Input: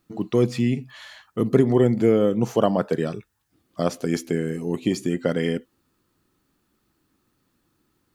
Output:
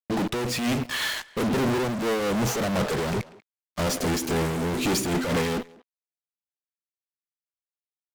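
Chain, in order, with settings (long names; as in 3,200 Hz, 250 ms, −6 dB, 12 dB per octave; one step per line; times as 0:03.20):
0:00.46–0:01.50: low-shelf EQ 320 Hz −10 dB
downward compressor, threshold −19 dBFS, peak gain reduction 8 dB
fuzz pedal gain 48 dB, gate −49 dBFS
far-end echo of a speakerphone 190 ms, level −16 dB
amplitude modulation by smooth noise, depth 60%
level −7.5 dB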